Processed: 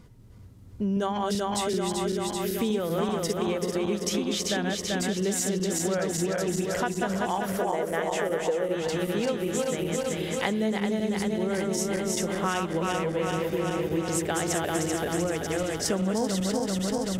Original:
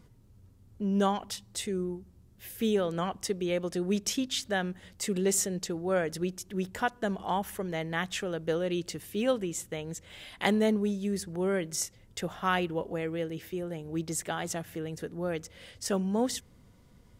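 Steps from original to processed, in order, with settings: backward echo that repeats 193 ms, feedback 79%, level -3 dB; 7.61–8.75 s: graphic EQ 125/500/4000/8000 Hz -11/+9/-6/+4 dB; gain riding 2 s; treble shelf 10 kHz -3.5 dB; compression, threshold -30 dBFS, peak gain reduction 12 dB; trim +6 dB

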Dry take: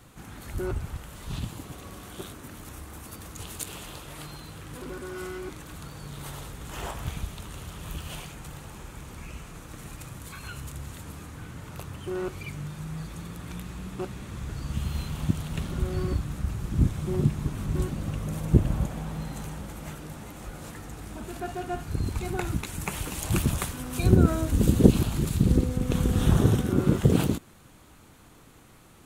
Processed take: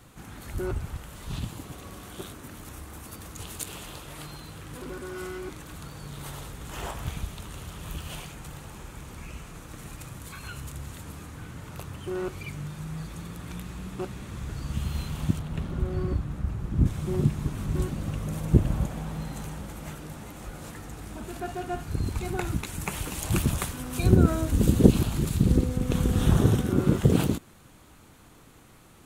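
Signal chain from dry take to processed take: 15.39–16.86 s: treble shelf 2.7 kHz -11 dB

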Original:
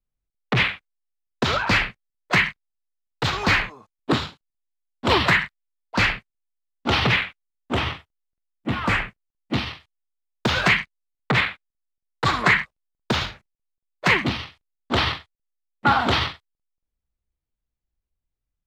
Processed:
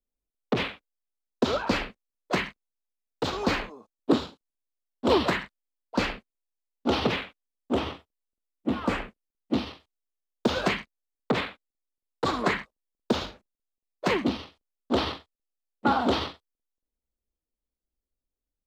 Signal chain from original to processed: ten-band graphic EQ 125 Hz -9 dB, 250 Hz +8 dB, 500 Hz +7 dB, 2 kHz -8 dB; trim -6 dB

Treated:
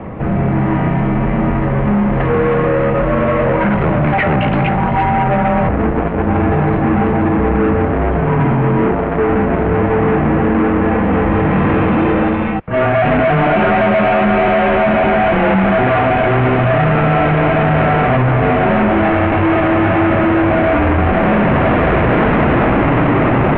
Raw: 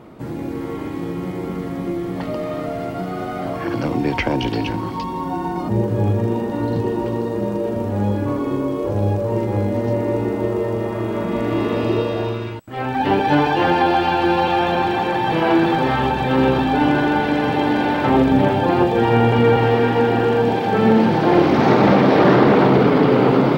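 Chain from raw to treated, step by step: peaking EQ 780 Hz +3 dB 0.4 oct; in parallel at +3 dB: peak limiter -15.5 dBFS, peak gain reduction 12.5 dB; on the sum: overload inside the chain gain 18.5 dB; mistuned SSB -140 Hz 190–2700 Hz; trim +8 dB

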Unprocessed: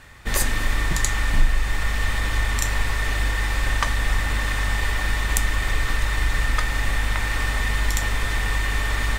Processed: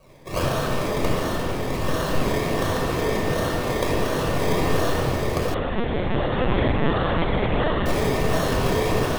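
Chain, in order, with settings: steep high-pass 560 Hz 72 dB/octave; level rider gain up to 5 dB; decimation with a swept rate 25×, swing 60% 1.4 Hz; overload inside the chain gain 6 dB; flange 1.7 Hz, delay 1.5 ms, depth 4.1 ms, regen +72%; multi-head delay 116 ms, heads second and third, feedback 75%, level -15 dB; simulated room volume 3800 m³, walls mixed, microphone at 5.5 m; 5.54–7.86 s: LPC vocoder at 8 kHz pitch kept; trim -2.5 dB

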